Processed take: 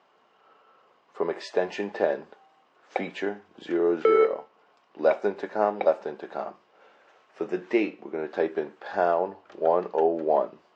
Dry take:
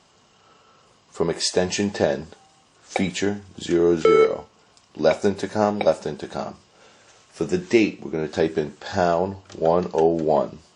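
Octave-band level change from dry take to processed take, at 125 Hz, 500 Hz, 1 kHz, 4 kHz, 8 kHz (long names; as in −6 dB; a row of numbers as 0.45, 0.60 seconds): −17.0 dB, −4.0 dB, −2.5 dB, below −10 dB, below −20 dB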